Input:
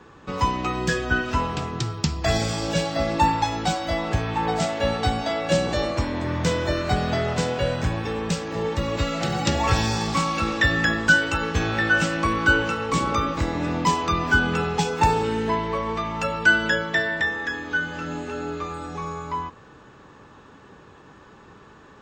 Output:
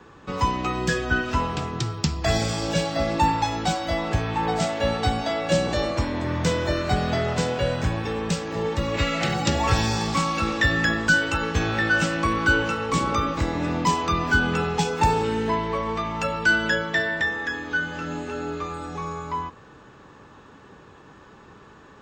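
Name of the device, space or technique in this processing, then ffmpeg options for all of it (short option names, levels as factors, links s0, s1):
one-band saturation: -filter_complex "[0:a]acrossover=split=400|4000[s0][s1][s2];[s1]asoftclip=type=tanh:threshold=0.224[s3];[s0][s3][s2]amix=inputs=3:normalize=0,asettb=1/sr,asplit=3[s4][s5][s6];[s4]atrim=end=8.944[s7];[s5]atrim=start=8.94:end=9.34,asetpts=PTS-STARTPTS,afade=t=in:d=0.004:c=qsin,afade=t=out:st=0.396:d=0.004:c=qsin,equalizer=f=2200:w=1.5:g=7.5[s8];[s6]atrim=start=9.336[s9];[s7][s8]acrossfade=d=0.004:c1=hsin:c2=qsin[s10];[s10][s9]acrossfade=d=0.004:c1=qsin:c2=hsin"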